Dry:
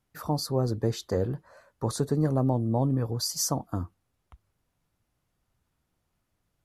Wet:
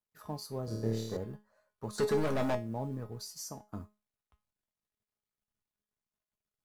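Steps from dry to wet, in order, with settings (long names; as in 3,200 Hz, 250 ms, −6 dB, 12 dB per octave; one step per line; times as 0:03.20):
mu-law and A-law mismatch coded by A
0:01.98–0:02.55: mid-hump overdrive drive 30 dB, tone 5,000 Hz, clips at −13.5 dBFS
0:03.20–0:03.64: downward compressor 2 to 1, threshold −33 dBFS, peak gain reduction 6 dB
tuned comb filter 210 Hz, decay 0.28 s, harmonics all, mix 80%
0:00.65–0:01.17: flutter between parallel walls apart 4.6 metres, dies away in 0.94 s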